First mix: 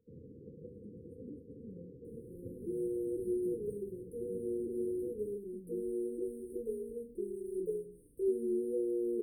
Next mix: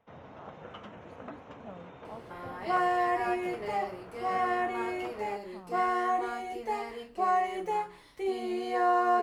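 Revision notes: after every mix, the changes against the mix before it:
master: remove brick-wall FIR band-stop 520–8400 Hz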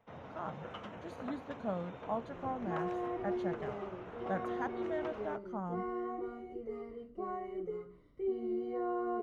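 speech +9.5 dB; second sound: add boxcar filter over 52 samples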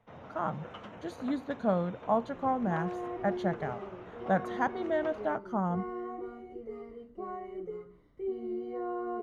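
speech +9.0 dB

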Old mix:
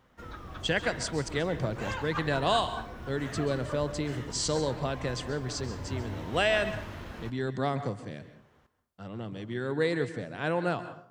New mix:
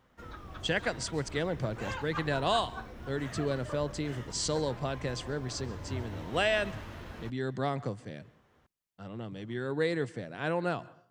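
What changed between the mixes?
speech: send -11.5 dB; background: send off

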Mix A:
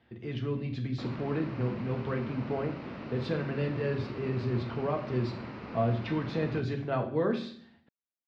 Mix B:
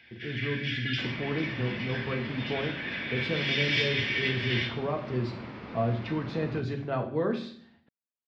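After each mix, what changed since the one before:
first sound: unmuted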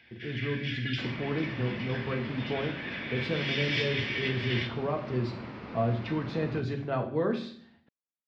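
first sound: send -6.5 dB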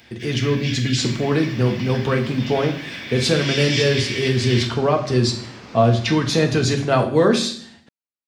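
speech +12.0 dB; master: remove distance through air 360 m

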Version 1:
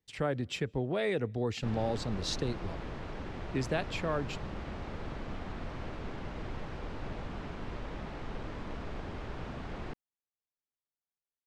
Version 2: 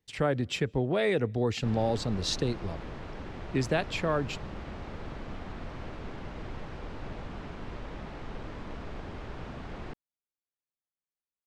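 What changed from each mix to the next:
speech +4.5 dB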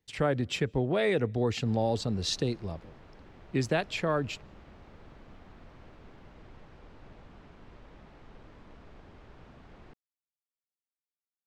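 background -12.0 dB

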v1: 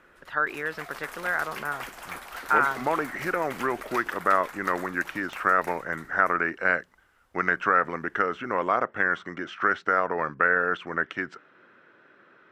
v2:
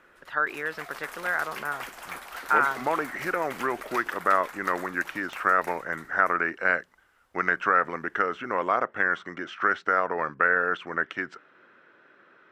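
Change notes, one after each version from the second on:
master: add bass shelf 220 Hz -5.5 dB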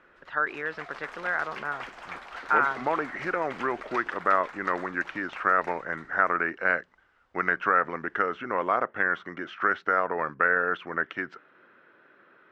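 master: add distance through air 140 m

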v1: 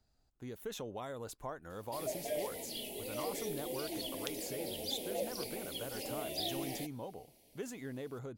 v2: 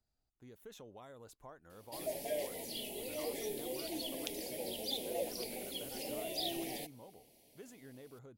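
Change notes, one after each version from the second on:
speech -10.5 dB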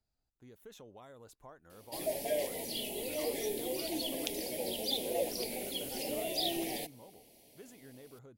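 background +4.5 dB

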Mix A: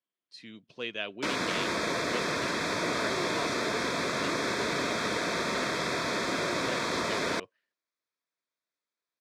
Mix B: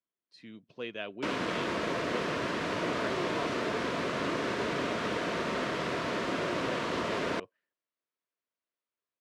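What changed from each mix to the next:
background: remove Butterworth band-stop 2.9 kHz, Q 4.3; master: add treble shelf 2.4 kHz -11 dB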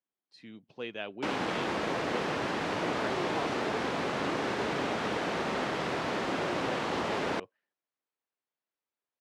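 master: remove Butterworth band-stop 810 Hz, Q 5.5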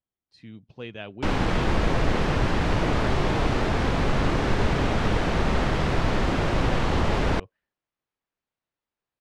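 background +4.5 dB; master: remove high-pass 260 Hz 12 dB/octave

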